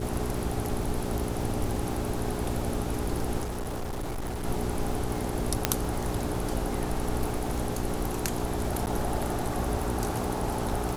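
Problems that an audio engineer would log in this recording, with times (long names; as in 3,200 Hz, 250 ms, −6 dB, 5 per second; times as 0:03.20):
surface crackle 270 per second −36 dBFS
mains hum 60 Hz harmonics 7 −34 dBFS
0:03.43–0:04.45: clipping −29.5 dBFS
0:05.65: click −4 dBFS
0:08.86–0:08.87: drop-out 9.8 ms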